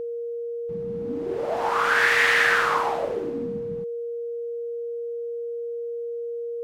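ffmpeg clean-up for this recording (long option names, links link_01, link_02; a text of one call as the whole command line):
ffmpeg -i in.wav -af "bandreject=frequency=470:width=30" out.wav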